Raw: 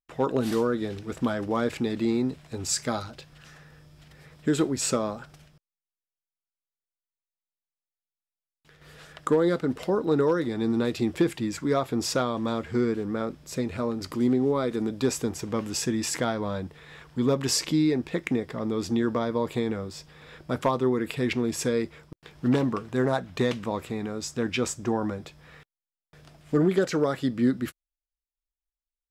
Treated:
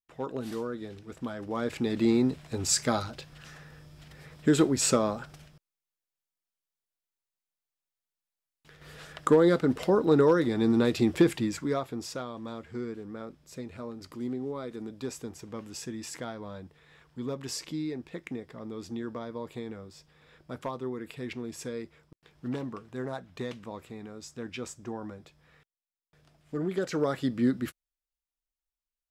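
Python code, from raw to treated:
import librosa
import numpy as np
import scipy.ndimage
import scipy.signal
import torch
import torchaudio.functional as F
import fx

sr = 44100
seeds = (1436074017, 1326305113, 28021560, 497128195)

y = fx.gain(x, sr, db=fx.line((1.32, -9.5), (2.06, 1.5), (11.35, 1.5), (12.1, -11.0), (26.54, -11.0), (27.08, -2.5)))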